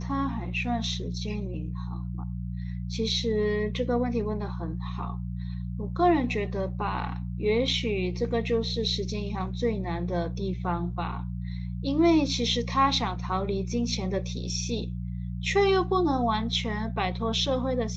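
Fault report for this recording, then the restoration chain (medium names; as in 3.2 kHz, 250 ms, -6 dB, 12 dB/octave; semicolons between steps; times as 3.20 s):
hum 60 Hz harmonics 3 -33 dBFS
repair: de-hum 60 Hz, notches 3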